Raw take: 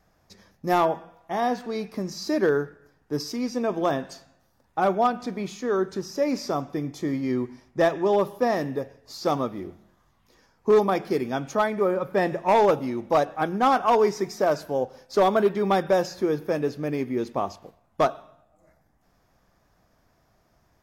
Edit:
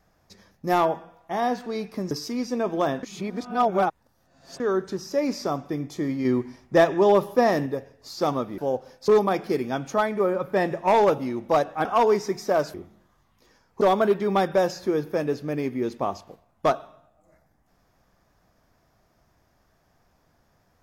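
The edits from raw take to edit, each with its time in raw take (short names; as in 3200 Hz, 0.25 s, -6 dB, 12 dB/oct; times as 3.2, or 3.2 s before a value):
2.11–3.15 cut
4.07–5.64 reverse
7.29–8.7 gain +3.5 dB
9.62–10.69 swap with 14.66–15.16
13.46–13.77 cut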